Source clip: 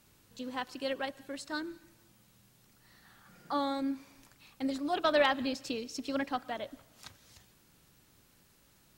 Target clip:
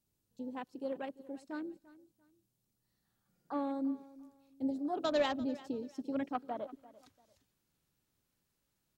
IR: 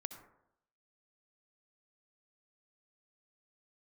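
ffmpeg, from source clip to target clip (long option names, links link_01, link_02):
-af "afwtdn=0.01,asetnsamples=nb_out_samples=441:pad=0,asendcmd='6.35 equalizer g -2',equalizer=frequency=1700:width_type=o:width=2.4:gain=-10.5,aecho=1:1:343|686:0.112|0.0303"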